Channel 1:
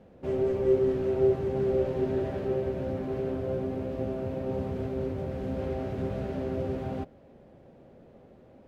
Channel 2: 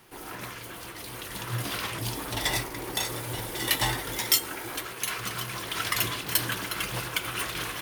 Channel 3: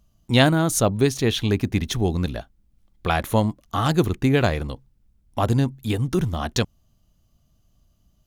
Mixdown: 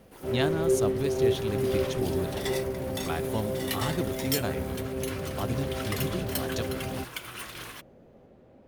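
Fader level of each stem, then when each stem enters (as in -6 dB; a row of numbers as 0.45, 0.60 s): -1.0, -8.0, -12.0 dB; 0.00, 0.00, 0.00 s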